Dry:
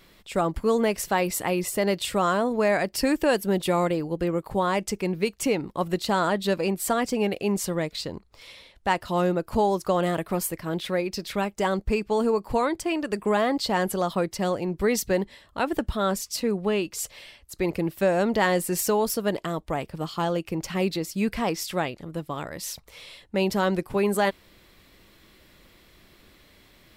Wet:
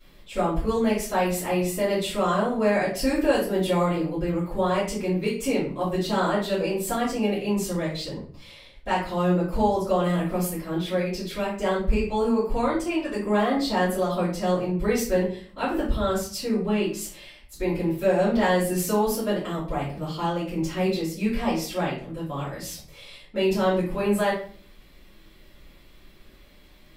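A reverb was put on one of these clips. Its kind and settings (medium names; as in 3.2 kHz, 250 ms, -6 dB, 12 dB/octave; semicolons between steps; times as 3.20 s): simulated room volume 45 m³, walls mixed, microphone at 2.7 m; trim -13.5 dB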